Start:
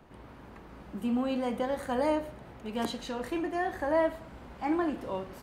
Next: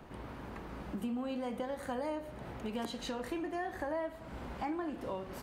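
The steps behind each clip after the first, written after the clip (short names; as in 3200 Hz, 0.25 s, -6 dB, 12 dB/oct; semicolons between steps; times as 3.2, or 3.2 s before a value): compressor 5:1, threshold -40 dBFS, peak gain reduction 15.5 dB; gain +4 dB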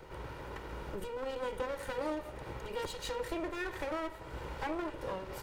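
minimum comb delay 2.1 ms; gain +3 dB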